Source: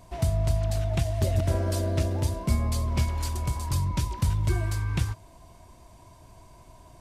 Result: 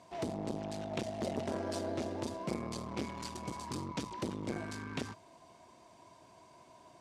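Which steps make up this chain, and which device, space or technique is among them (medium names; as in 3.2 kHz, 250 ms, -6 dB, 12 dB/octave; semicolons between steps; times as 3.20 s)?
public-address speaker with an overloaded transformer (transformer saturation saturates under 330 Hz; band-pass 230–6900 Hz); trim -3 dB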